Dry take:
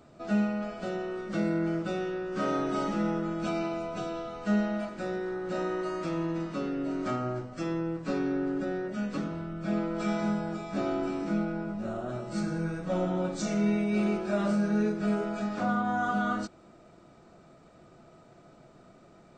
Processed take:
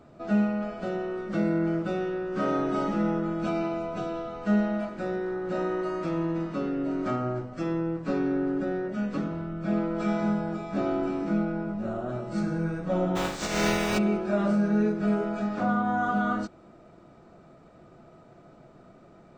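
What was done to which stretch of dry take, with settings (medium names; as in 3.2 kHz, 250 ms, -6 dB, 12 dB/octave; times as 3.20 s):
13.15–13.97 s: spectral contrast reduction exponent 0.35
whole clip: treble shelf 3.2 kHz -9.5 dB; trim +3 dB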